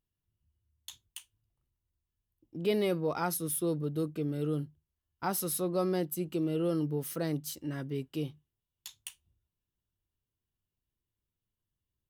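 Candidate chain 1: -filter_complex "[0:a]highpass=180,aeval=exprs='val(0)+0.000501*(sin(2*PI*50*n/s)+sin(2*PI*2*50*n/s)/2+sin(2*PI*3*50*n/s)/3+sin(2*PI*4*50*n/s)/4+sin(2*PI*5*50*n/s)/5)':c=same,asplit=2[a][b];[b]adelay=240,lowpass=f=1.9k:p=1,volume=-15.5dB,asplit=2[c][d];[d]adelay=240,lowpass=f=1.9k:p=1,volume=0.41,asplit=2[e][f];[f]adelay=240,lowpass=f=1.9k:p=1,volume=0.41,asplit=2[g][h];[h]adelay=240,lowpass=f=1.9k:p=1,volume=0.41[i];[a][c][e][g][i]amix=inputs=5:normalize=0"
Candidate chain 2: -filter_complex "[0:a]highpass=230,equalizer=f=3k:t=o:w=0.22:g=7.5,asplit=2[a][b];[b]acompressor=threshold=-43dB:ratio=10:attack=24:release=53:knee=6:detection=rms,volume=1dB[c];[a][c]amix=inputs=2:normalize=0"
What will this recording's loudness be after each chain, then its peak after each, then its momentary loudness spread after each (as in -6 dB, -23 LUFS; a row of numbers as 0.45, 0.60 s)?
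-34.0, -32.0 LUFS; -18.5, -16.5 dBFS; 18, 13 LU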